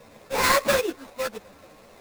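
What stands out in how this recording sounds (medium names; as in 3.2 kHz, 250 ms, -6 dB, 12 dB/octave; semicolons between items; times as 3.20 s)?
aliases and images of a low sample rate 3.1 kHz, jitter 20%; a shimmering, thickened sound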